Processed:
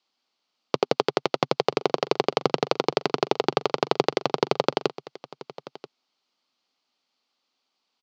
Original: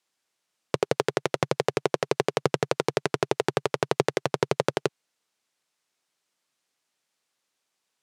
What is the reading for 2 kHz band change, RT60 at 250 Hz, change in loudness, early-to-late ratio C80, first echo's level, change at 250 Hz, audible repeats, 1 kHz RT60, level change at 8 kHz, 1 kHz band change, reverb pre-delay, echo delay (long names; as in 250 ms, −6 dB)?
−1.0 dB, no reverb audible, +2.0 dB, no reverb audible, −18.0 dB, +2.5 dB, 1, no reverb audible, −5.0 dB, +4.0 dB, no reverb audible, 984 ms